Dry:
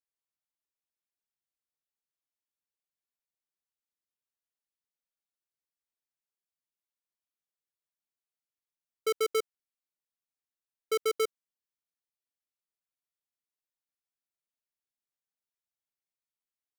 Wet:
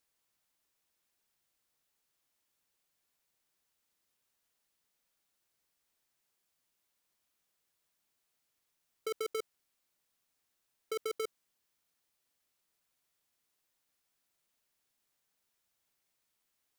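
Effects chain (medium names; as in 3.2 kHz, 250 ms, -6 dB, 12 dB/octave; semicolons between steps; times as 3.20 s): compressor with a negative ratio -37 dBFS, ratio -1; trim +2.5 dB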